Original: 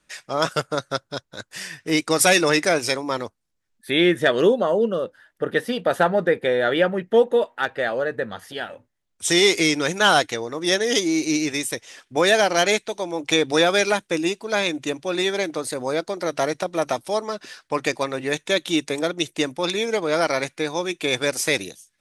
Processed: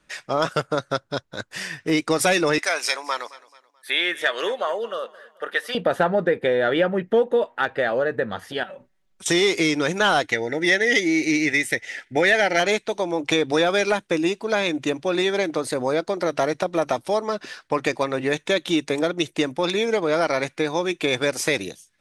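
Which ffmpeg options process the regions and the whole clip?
-filter_complex "[0:a]asettb=1/sr,asplit=3[a][b][c];[a]atrim=end=2.584[d];[b]atrim=start=2.58:end=5.75,asetpts=PTS-STARTPTS,afade=t=in:d=0.004:c=qsin,afade=t=out:st=3.166:d=0.004:c=qsin,highpass=940,highshelf=f=4.8k:g=4,aecho=1:1:217|434|651:0.0891|0.0357|0.0143,atrim=end_sample=139797[e];[c]atrim=start=5.746[f];[d][e]acrossfade=d=0.004:c1=hsin:c2=qsin[g];[g][f]acrossfade=d=0.004:c1=qsin:c2=hsin,asettb=1/sr,asplit=3[h][i][j];[h]atrim=end=8.634[k];[i]atrim=start=8.63:end=9.26,asetpts=PTS-STARTPTS,afade=t=in:d=0.004:c=qsin,afade=t=out:st=0.626:d=0.004:c=qsin,aecho=1:1:5.3:0.94,atrim=end_sample=27783,acompressor=threshold=-40dB:ratio=5:attack=3.2:release=140:knee=1:detection=peak[l];[j]atrim=start=9.256[m];[k][l]acrossfade=d=0.004:c1=hsin:c2=qsin[n];[n][m]acrossfade=d=0.004:c1=qsin:c2=hsin,asettb=1/sr,asplit=3[o][p][q];[o]atrim=end=10.324[r];[p]atrim=start=10.32:end=12.6,asetpts=PTS-STARTPTS,afade=t=in:d=0.004:c=qsin,afade=t=out:st=2.276:d=0.004:c=qsin,asuperstop=centerf=1100:order=12:qfactor=3.2,equalizer=f=2k:w=3.6:g=14.5[s];[q]atrim=start=12.596[t];[r][s]acrossfade=d=0.004:c1=hsin:c2=qsin[u];[u][t]acrossfade=d=0.004:c1=qsin:c2=hsin,acontrast=20,highshelf=f=5.1k:g=-9,acompressor=threshold=-20dB:ratio=2"

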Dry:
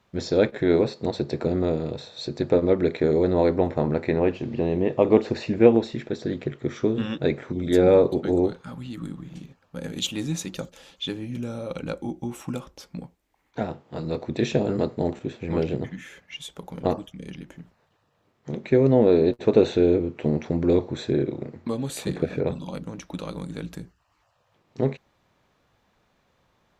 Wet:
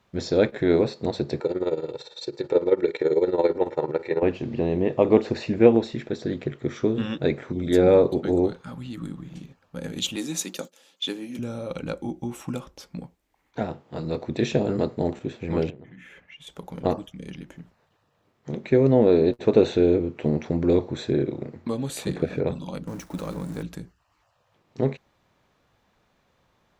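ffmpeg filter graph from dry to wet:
-filter_complex "[0:a]asettb=1/sr,asplit=3[a][b][c];[a]atrim=end=1.404[d];[b]atrim=start=1.4:end=4.23,asetpts=PTS-STARTPTS,afade=t=in:d=0.004:c=qsin,afade=t=out:st=2.826:d=0.004:c=qsin,highpass=220,aecho=1:1:2.2:0.72,atrim=end_sample=124803,tremolo=f=18:d=0.76[e];[c]atrim=start=4.226[f];[d][e]acrossfade=d=0.004:c1=hsin:c2=qsin[g];[g][f]acrossfade=d=0.004:c1=qsin:c2=hsin,asettb=1/sr,asplit=3[h][i][j];[h]atrim=end=10.164[k];[i]atrim=start=10.16:end=11.39,asetpts=PTS-STARTPTS,afade=t=in:d=0.004:c=qsin,afade=t=out:st=1.226:d=0.004:c=qsin,highpass=f=210:w=0.5412,highpass=f=210:w=1.3066,agate=range=-10dB:threshold=-44dB:ratio=16:release=100:detection=peak,highshelf=f=5.5k:g=9[l];[j]atrim=start=11.386[m];[k][l]acrossfade=d=0.004:c1=hsin:c2=qsin[n];[n][m]acrossfade=d=0.004:c1=qsin:c2=hsin,asettb=1/sr,asplit=3[o][p][q];[o]atrim=end=15.704[r];[p]atrim=start=15.7:end=16.47,asetpts=PTS-STARTPTS,afade=t=in:d=0.004:c=qsin,afade=t=out:st=0.766:d=0.004:c=qsin,highshelf=f=3.5k:t=q:w=1.5:g=-7.5,bandreject=f=60:t=h:w=6,bandreject=f=120:t=h:w=6,bandreject=f=180:t=h:w=6,bandreject=f=240:t=h:w=6,bandreject=f=300:t=h:w=6,bandreject=f=360:t=h:w=6,acompressor=threshold=-44dB:ratio=4:attack=3.2:release=140:knee=1:detection=peak[s];[q]atrim=start=16.466[t];[r][s]acrossfade=d=0.004:c1=hsin:c2=qsin[u];[u][t]acrossfade=d=0.004:c1=qsin:c2=hsin,asettb=1/sr,asplit=3[v][w][x];[v]atrim=end=22.874[y];[w]atrim=start=22.87:end=23.63,asetpts=PTS-STARTPTS,afade=t=in:d=0.004:c=qsin,afade=t=out:st=0.756:d=0.004:c=qsin,aeval=exprs='val(0)+0.5*0.0133*sgn(val(0))':c=same,agate=range=-33dB:threshold=-35dB:ratio=3:release=100:detection=peak,equalizer=f=3.2k:w=1.1:g=-7[z];[x]atrim=start=23.626[aa];[y][z]acrossfade=d=0.004:c1=hsin:c2=qsin[ab];[ab][aa]acrossfade=d=0.004:c1=qsin:c2=hsin"

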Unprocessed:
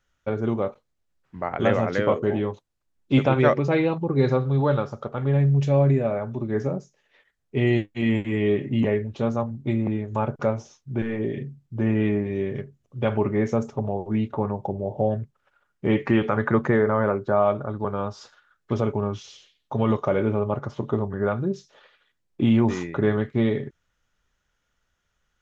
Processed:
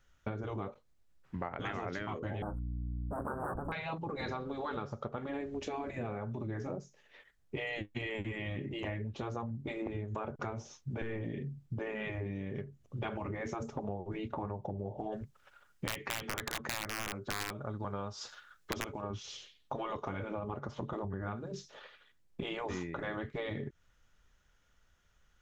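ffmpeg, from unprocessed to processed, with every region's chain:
-filter_complex "[0:a]asettb=1/sr,asplit=3[a][b][c];[a]atrim=end=2.424[d];[b]atrim=start=2.42:end=3.72,asetpts=PTS-STARTPTS,afade=t=in:d=0.004:c=qsin,afade=t=out:st=1.296:d=0.004:c=qsin,aeval=exprs='abs(val(0))':c=same,asuperstop=centerf=3700:order=20:qfactor=0.56,aeval=exprs='val(0)+0.0251*(sin(2*PI*60*n/s)+sin(2*PI*2*60*n/s)/2+sin(2*PI*3*60*n/s)/3+sin(2*PI*4*60*n/s)/4+sin(2*PI*5*60*n/s)/5)':c=same[e];[c]atrim=start=3.716[f];[d][e]acrossfade=d=0.004:c1=hsin:c2=qsin[g];[g][f]acrossfade=d=0.004:c1=qsin:c2=hsin,asettb=1/sr,asplit=3[h][i][j];[h]atrim=end=15.124[k];[i]atrim=start=15.12:end=19.02,asetpts=PTS-STARTPTS,afade=t=in:d=0.004:c=qsin,afade=t=out:st=3.896:d=0.004:c=qsin,highshelf=f=2.3k:g=8.5,aeval=exprs='(mod(3.55*val(0)+1,2)-1)/3.55':c=same[l];[j]atrim=start=19.016[m];[k][l]acrossfade=d=0.004:c1=hsin:c2=qsin[n];[n][m]acrossfade=d=0.004:c1=qsin:c2=hsin,afftfilt=real='re*lt(hypot(re,im),0.316)':imag='im*lt(hypot(re,im),0.316)':win_size=1024:overlap=0.75,lowshelf=f=83:g=6,acompressor=threshold=-37dB:ratio=6,volume=1.5dB"

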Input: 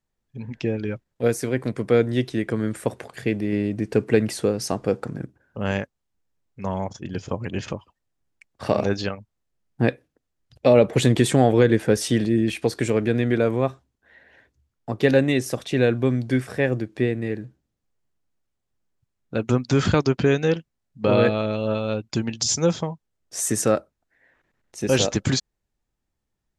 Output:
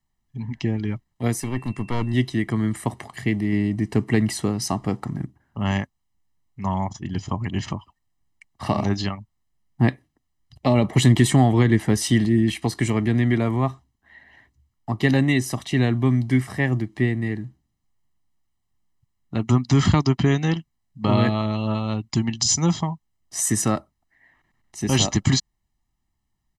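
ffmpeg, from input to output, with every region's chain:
-filter_complex "[0:a]asettb=1/sr,asplit=3[a][b][c];[a]atrim=end=1.404[d];[b]atrim=start=1.4:end=2.14,asetpts=PTS-STARTPTS,afade=t=in:d=0.004:c=qsin,afade=t=out:st=0.736:d=0.004:c=qsin,highpass=48,aeval=exprs='(tanh(7.08*val(0)+0.55)-tanh(0.55))/7.08':c=same,aeval=exprs='val(0)+0.00355*sin(2*PI*2700*n/s)':c=same[e];[c]atrim=start=2.136[f];[d][e]acrossfade=d=0.004:c1=hsin:c2=qsin[g];[g][f]acrossfade=d=0.004:c1=qsin:c2=hsin,aecho=1:1:1:0.81,acrossover=split=390|3000[h][i][j];[i]acompressor=threshold=-20dB:ratio=6[k];[h][k][j]amix=inputs=3:normalize=0"

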